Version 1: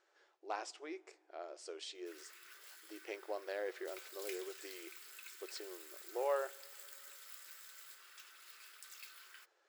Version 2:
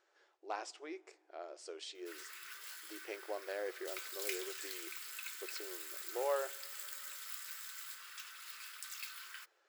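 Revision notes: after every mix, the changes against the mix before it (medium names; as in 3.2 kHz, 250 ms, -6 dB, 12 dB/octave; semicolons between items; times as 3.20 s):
background +7.5 dB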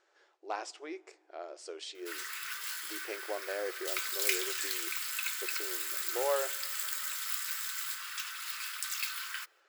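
speech +4.0 dB; background +10.5 dB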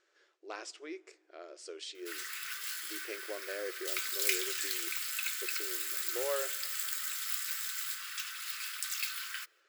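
master: add peaking EQ 820 Hz -12.5 dB 0.72 oct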